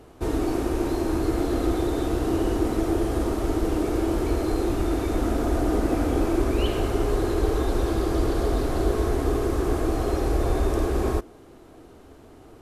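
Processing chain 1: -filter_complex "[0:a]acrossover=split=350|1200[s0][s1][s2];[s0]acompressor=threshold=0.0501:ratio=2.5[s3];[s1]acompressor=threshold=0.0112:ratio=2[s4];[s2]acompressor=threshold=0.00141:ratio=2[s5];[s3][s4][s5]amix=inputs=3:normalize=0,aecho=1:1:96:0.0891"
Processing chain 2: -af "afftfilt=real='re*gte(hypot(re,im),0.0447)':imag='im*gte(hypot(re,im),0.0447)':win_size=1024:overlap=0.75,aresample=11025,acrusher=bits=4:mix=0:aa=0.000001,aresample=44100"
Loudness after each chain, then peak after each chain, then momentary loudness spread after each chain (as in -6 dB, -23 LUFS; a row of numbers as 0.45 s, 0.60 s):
-29.5 LUFS, -24.5 LUFS; -15.0 dBFS, -9.0 dBFS; 2 LU, 2 LU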